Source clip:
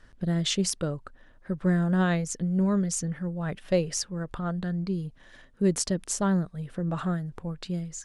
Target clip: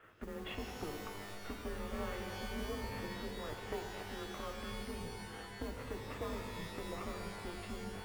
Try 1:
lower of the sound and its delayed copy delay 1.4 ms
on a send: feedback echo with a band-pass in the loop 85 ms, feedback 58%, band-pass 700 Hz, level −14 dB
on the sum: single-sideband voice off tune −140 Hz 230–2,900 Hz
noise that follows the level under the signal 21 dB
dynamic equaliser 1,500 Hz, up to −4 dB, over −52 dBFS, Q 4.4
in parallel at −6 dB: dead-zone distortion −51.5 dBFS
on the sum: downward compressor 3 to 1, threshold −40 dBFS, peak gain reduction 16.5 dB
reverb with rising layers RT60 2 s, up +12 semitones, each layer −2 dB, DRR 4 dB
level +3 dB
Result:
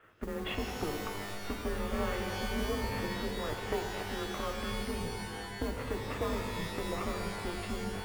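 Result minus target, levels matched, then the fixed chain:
downward compressor: peak gain reduction −7.5 dB
lower of the sound and its delayed copy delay 1.4 ms
on a send: feedback echo with a band-pass in the loop 85 ms, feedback 58%, band-pass 700 Hz, level −14 dB
on the sum: single-sideband voice off tune −140 Hz 230–2,900 Hz
noise that follows the level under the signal 21 dB
dynamic equaliser 1,500 Hz, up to −4 dB, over −52 dBFS, Q 4.4
in parallel at −6 dB: dead-zone distortion −51.5 dBFS
on the sum: downward compressor 3 to 1, threshold −51 dBFS, peak gain reduction 23.5 dB
reverb with rising layers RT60 2 s, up +12 semitones, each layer −2 dB, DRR 4 dB
level +3 dB

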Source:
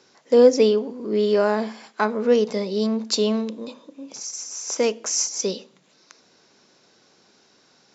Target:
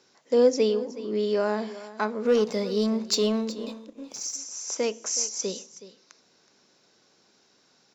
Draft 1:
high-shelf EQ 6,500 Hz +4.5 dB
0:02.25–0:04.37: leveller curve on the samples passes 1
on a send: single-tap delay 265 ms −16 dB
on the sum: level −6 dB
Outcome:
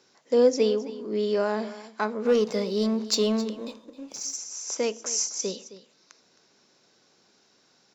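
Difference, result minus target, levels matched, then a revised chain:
echo 106 ms early
high-shelf EQ 6,500 Hz +4.5 dB
0:02.25–0:04.37: leveller curve on the samples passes 1
on a send: single-tap delay 371 ms −16 dB
on the sum: level −6 dB

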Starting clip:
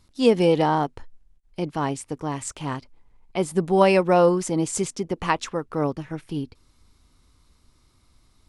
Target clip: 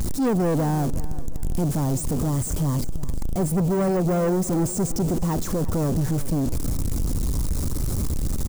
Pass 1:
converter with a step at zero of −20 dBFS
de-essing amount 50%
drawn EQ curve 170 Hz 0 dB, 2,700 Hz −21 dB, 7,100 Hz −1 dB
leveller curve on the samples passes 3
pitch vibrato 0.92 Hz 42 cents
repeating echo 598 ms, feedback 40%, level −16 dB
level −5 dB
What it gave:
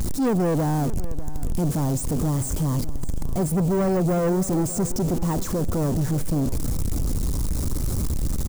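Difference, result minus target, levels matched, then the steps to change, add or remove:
echo 237 ms late
change: repeating echo 361 ms, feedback 40%, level −16 dB

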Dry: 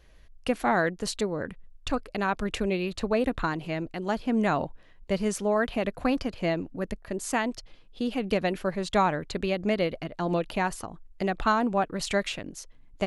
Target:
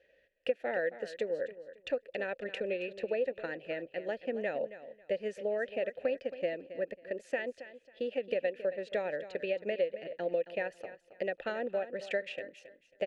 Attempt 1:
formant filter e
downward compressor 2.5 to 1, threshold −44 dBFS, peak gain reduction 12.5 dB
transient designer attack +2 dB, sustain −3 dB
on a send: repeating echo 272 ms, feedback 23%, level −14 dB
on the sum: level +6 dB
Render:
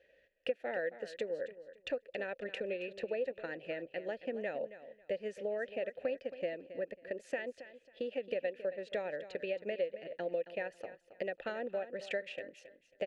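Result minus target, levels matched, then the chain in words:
downward compressor: peak gain reduction +4 dB
formant filter e
downward compressor 2.5 to 1, threshold −37.5 dBFS, peak gain reduction 9 dB
transient designer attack +2 dB, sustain −3 dB
on a send: repeating echo 272 ms, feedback 23%, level −14 dB
on the sum: level +6 dB

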